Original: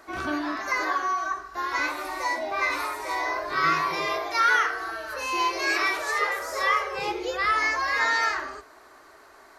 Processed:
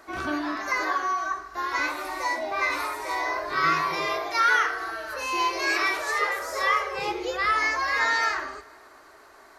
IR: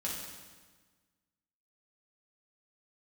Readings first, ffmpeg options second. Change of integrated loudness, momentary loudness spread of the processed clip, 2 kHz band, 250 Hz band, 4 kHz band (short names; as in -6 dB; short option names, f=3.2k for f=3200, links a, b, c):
0.0 dB, 8 LU, 0.0 dB, 0.0 dB, 0.0 dB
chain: -filter_complex "[0:a]asplit=2[a][b];[1:a]atrim=start_sample=2205,asetrate=32634,aresample=44100,adelay=80[c];[b][c]afir=irnorm=-1:irlink=0,volume=-25dB[d];[a][d]amix=inputs=2:normalize=0"